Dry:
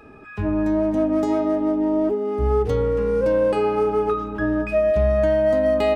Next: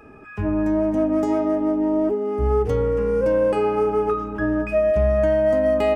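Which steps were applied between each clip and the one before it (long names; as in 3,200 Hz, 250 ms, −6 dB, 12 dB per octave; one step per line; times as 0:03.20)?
parametric band 3,900 Hz −9.5 dB 0.41 octaves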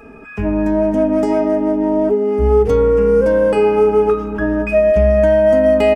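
comb filter 4.4 ms, depth 52%
level +5.5 dB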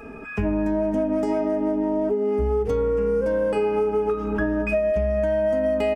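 downward compressor 6 to 1, threshold −20 dBFS, peak gain reduction 11 dB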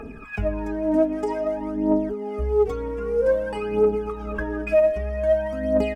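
phase shifter 0.52 Hz, delay 3.3 ms, feedback 71%
level −4 dB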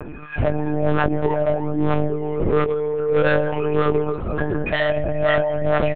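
wave folding −18.5 dBFS
double-tracking delay 19 ms −6.5 dB
one-pitch LPC vocoder at 8 kHz 150 Hz
level +3.5 dB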